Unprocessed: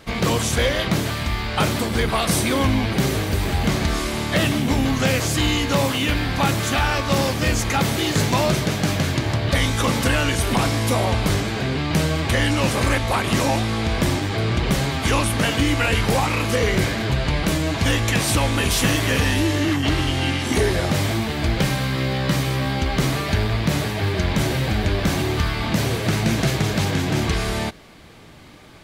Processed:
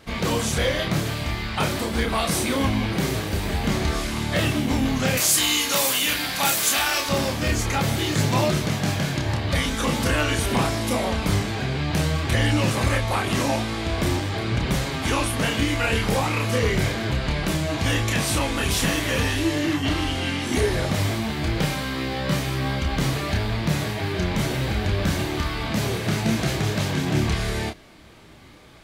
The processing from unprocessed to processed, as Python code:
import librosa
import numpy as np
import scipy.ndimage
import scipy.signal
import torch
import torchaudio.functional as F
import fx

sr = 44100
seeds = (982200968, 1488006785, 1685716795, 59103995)

y = fx.riaa(x, sr, side='recording', at=(5.17, 7.09))
y = fx.chorus_voices(y, sr, voices=2, hz=0.24, base_ms=30, depth_ms=3.5, mix_pct=40)